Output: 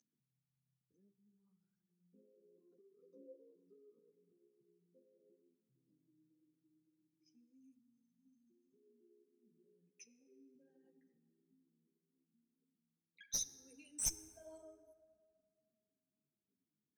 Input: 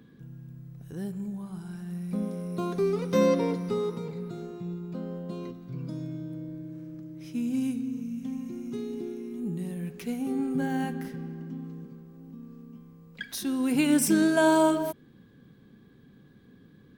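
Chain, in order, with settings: formant sharpening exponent 3; in parallel at +1.5 dB: compressor, threshold -42 dBFS, peak gain reduction 21.5 dB; on the sum: band-pass 6200 Hz, Q 20; one-sided clip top -45 dBFS, bottom -33 dBFS; on a send at -13 dB: reverb RT60 2.2 s, pre-delay 4 ms; on the sum: ensemble effect; gain +14.5 dB

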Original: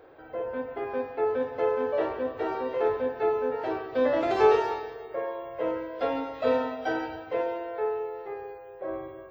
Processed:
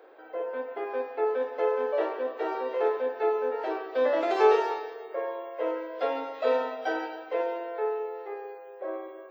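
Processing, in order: HPF 330 Hz 24 dB/oct

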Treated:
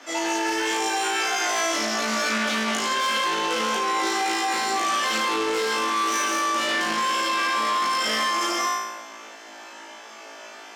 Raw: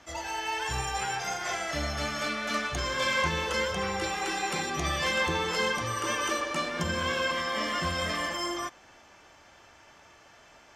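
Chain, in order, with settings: 5.19–7.8 doubler 43 ms -5 dB; flutter echo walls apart 3.1 m, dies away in 0.85 s; soft clip -24.5 dBFS, distortion -9 dB; Chebyshev high-pass 230 Hz, order 5; limiter -24 dBFS, peak gain reduction 6.5 dB; Doppler distortion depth 0.11 ms; gain +8.5 dB

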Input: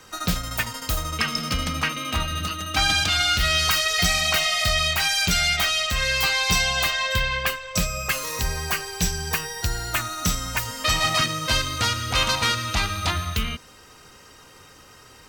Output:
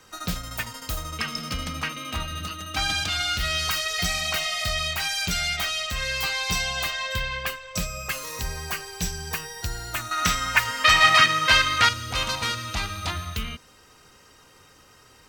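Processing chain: 10.11–11.89 bell 1800 Hz +14.5 dB 2.4 oct; gain -5 dB

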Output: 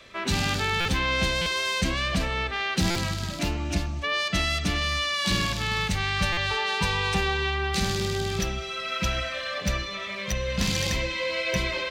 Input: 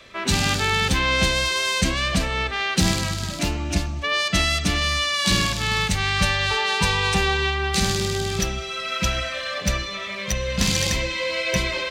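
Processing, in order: dynamic EQ 8400 Hz, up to -5 dB, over -41 dBFS, Q 0.85; in parallel at -2.5 dB: limiter -14.5 dBFS, peak gain reduction 7 dB; on the sum: stuck buffer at 0.8/1.41/2.9/6.32, samples 256, times 8; gain -7.5 dB

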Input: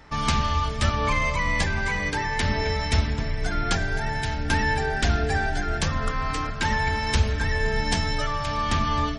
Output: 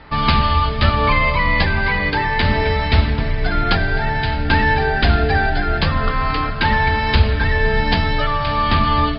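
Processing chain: Chebyshev low-pass 4900 Hz, order 8; gain +8.5 dB

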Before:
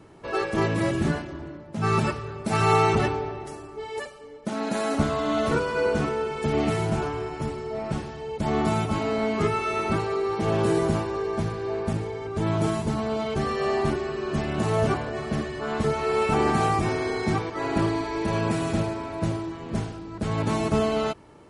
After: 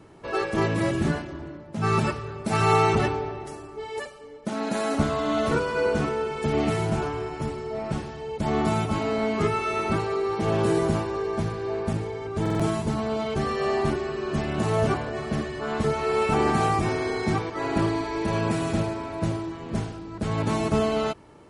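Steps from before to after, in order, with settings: stuck buffer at 12.41, samples 2048, times 3

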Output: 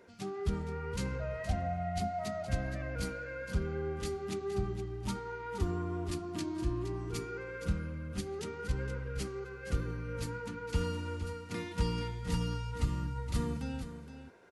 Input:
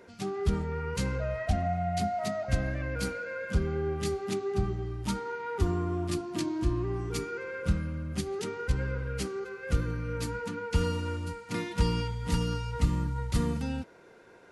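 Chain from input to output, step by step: echo 0.468 s -11 dB; gain -5.5 dB

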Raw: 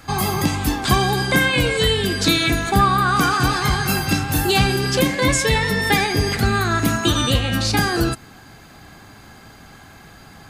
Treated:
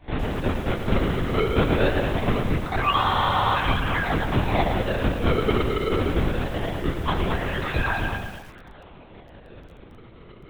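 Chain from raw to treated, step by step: HPF 40 Hz 24 dB/oct; in parallel at -3 dB: compressor, threshold -28 dBFS, peak gain reduction 16 dB; on the sum: metallic resonator 140 Hz, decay 0.58 s, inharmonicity 0.008; decimation with a swept rate 29×, swing 160% 0.22 Hz; thinning echo 0.214 s, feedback 20%, high-pass 280 Hz, level -7.5 dB; LPC vocoder at 8 kHz whisper; spectral freeze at 2.99, 0.57 s; lo-fi delay 0.112 s, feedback 35%, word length 8-bit, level -9 dB; gain +7.5 dB

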